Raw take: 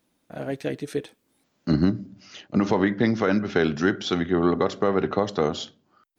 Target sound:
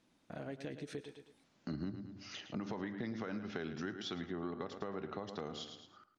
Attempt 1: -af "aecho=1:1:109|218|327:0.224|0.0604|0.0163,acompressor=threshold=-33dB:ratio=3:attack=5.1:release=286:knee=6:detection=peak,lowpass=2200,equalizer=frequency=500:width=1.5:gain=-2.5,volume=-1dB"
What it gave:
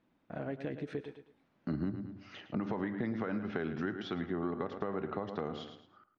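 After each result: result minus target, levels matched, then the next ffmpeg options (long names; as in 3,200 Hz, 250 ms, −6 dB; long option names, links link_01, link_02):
8,000 Hz band −17.5 dB; downward compressor: peak gain reduction −5.5 dB
-af "aecho=1:1:109|218|327:0.224|0.0604|0.0163,acompressor=threshold=-33dB:ratio=3:attack=5.1:release=286:knee=6:detection=peak,lowpass=7000,equalizer=frequency=500:width=1.5:gain=-2.5,volume=-1dB"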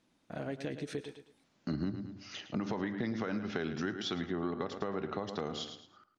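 downward compressor: peak gain reduction −5.5 dB
-af "aecho=1:1:109|218|327:0.224|0.0604|0.0163,acompressor=threshold=-41.5dB:ratio=3:attack=5.1:release=286:knee=6:detection=peak,lowpass=7000,equalizer=frequency=500:width=1.5:gain=-2.5,volume=-1dB"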